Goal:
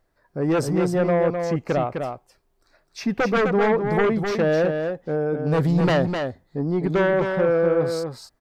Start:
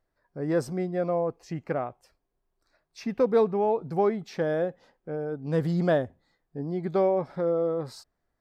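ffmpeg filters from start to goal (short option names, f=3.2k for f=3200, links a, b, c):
-filter_complex "[0:a]aeval=exprs='0.224*sin(PI/2*2.51*val(0)/0.224)':c=same,asplit=2[a][b];[b]aecho=0:1:256:0.531[c];[a][c]amix=inputs=2:normalize=0,volume=-3dB"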